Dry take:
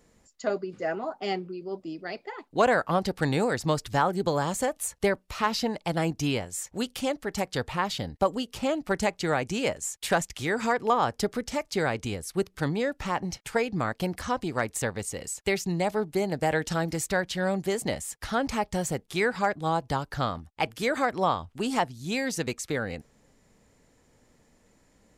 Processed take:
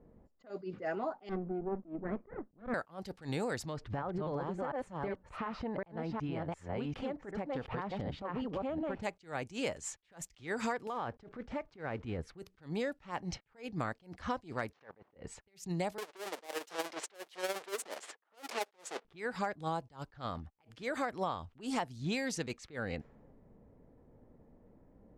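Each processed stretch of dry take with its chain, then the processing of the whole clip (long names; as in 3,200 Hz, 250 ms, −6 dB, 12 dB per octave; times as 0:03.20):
0:01.29–0:02.74: lower of the sound and its delayed copy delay 0.52 ms + low-pass filter 1,100 Hz + parametric band 210 Hz +8.5 dB 0.4 octaves
0:03.61–0:09.02: delay that plays each chunk backwards 370 ms, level −2 dB + downward compressor 10 to 1, threshold −34 dBFS
0:10.87–0:12.19: one scale factor per block 5 bits + downward compressor 5 to 1, threshold −33 dBFS
0:14.73–0:15.16: variable-slope delta modulation 32 kbit/s + high-pass filter 710 Hz 6 dB per octave + output level in coarse steps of 23 dB
0:15.98–0:19.05: each half-wave held at its own peak + high-pass filter 380 Hz 24 dB per octave + amplitude tremolo 17 Hz, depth 66%
whole clip: low-pass that shuts in the quiet parts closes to 660 Hz, open at −24 dBFS; downward compressor 6 to 1, threshold −35 dBFS; level that may rise only so fast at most 220 dB per second; level +3 dB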